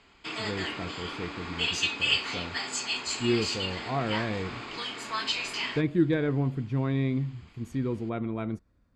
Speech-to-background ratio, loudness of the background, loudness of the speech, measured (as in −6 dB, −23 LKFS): −0.5 dB, −31.0 LKFS, −31.5 LKFS